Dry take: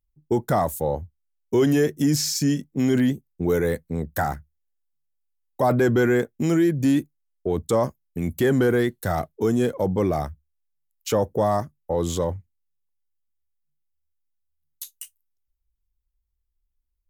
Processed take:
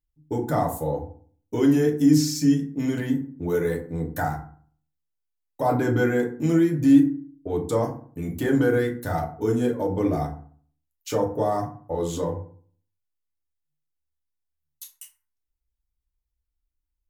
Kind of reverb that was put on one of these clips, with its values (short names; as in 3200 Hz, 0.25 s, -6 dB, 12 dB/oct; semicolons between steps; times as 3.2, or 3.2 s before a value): FDN reverb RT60 0.48 s, low-frequency decay 1.25×, high-frequency decay 0.5×, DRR -1 dB; gain -6.5 dB